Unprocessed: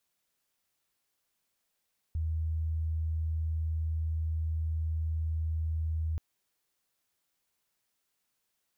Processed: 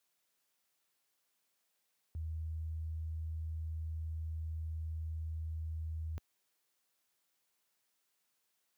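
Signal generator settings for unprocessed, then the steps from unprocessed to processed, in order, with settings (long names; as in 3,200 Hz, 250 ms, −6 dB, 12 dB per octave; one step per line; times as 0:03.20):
tone sine 79.8 Hz −28.5 dBFS 4.03 s
high-pass filter 66 Hz
low-shelf EQ 180 Hz −8 dB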